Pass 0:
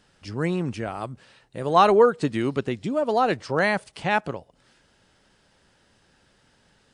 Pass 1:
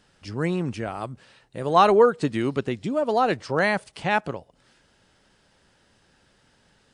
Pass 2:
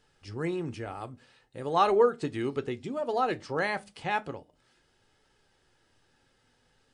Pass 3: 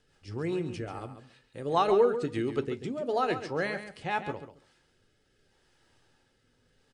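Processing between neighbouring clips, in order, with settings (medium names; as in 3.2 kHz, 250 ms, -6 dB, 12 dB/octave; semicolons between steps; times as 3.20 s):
no audible change
reverberation, pre-delay 7 ms, DRR 12.5 dB; flange 0.38 Hz, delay 2.2 ms, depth 1.9 ms, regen +84%; trim -3 dB
rotary cabinet horn 5 Hz, later 0.75 Hz, at 2.41 s; feedback delay 138 ms, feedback 16%, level -10.5 dB; trim +2 dB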